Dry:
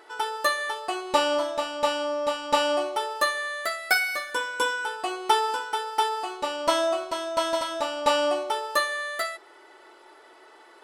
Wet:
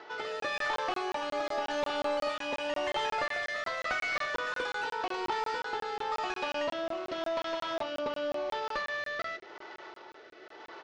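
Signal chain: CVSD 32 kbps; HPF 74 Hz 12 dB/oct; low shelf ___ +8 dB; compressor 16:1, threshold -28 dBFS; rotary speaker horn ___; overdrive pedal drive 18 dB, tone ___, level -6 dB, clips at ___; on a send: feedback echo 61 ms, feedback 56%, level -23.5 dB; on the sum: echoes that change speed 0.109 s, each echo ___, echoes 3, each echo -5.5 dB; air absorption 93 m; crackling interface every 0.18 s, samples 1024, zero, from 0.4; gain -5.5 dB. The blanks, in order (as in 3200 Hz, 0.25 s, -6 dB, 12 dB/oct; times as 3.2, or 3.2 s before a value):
450 Hz, 0.9 Hz, 4800 Hz, -17 dBFS, +6 st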